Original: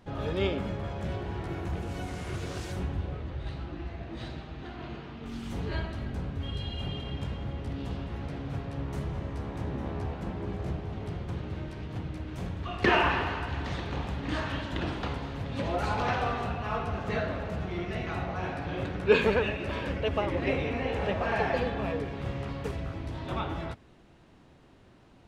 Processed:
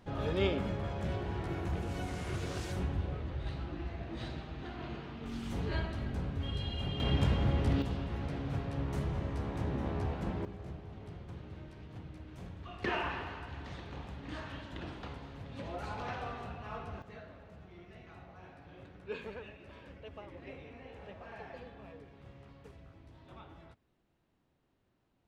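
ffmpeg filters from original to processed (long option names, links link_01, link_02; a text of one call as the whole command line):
ffmpeg -i in.wav -af "asetnsamples=nb_out_samples=441:pad=0,asendcmd='7 volume volume 6dB;7.82 volume volume -1dB;10.45 volume volume -11dB;17.02 volume volume -19.5dB',volume=-2dB" out.wav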